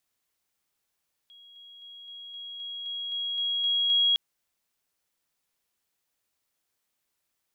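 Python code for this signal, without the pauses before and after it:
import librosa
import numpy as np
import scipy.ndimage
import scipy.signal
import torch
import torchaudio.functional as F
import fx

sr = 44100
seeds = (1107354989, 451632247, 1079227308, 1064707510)

y = fx.level_ladder(sr, hz=3300.0, from_db=-49.5, step_db=3.0, steps=11, dwell_s=0.26, gap_s=0.0)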